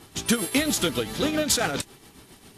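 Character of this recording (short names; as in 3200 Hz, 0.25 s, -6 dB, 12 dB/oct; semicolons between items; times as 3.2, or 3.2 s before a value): tremolo triangle 7.4 Hz, depth 65%; a quantiser's noise floor 10-bit, dither none; Vorbis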